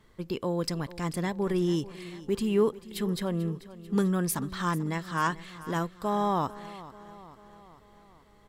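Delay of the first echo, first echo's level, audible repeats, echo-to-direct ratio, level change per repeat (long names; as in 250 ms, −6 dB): 441 ms, −17.0 dB, 4, −15.5 dB, −5.0 dB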